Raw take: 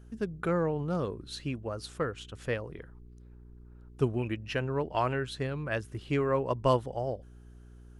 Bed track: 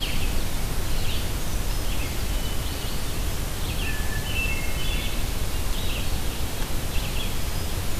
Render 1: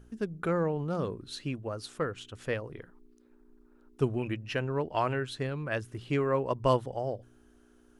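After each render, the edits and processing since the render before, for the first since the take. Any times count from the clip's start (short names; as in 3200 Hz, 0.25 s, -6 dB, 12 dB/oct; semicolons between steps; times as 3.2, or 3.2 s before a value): de-hum 60 Hz, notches 3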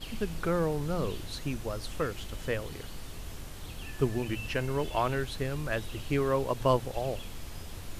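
add bed track -14.5 dB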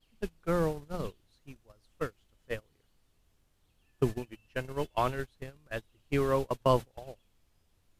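gate -28 dBFS, range -29 dB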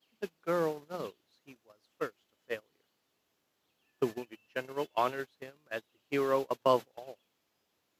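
HPF 280 Hz 12 dB/oct; bell 9100 Hz -13 dB 0.24 oct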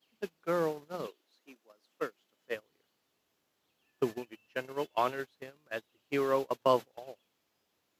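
1.06–2.54 HPF 300 Hz -> 110 Hz 24 dB/oct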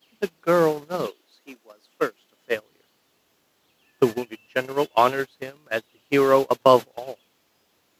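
gain +12 dB; limiter -2 dBFS, peak gain reduction 1.5 dB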